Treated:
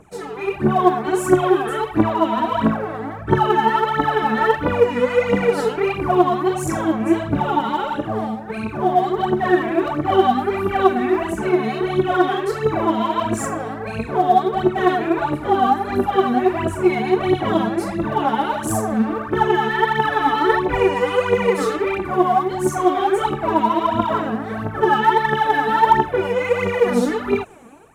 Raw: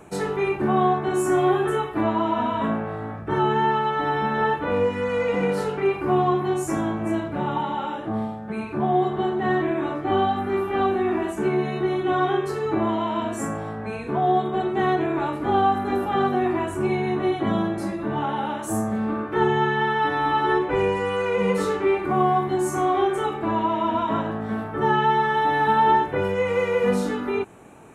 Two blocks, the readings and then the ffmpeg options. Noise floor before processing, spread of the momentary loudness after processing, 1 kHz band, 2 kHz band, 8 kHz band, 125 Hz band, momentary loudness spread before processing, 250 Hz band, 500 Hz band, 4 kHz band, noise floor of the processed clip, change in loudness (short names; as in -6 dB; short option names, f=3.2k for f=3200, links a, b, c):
-33 dBFS, 6 LU, +4.0 dB, +4.5 dB, +5.0 dB, +2.5 dB, 7 LU, +4.0 dB, +4.0 dB, +4.5 dB, -30 dBFS, +4.0 dB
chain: -af "dynaudnorm=f=230:g=5:m=11.5dB,aphaser=in_gain=1:out_gain=1:delay=4.5:decay=0.73:speed=1.5:type=triangular,volume=-7dB"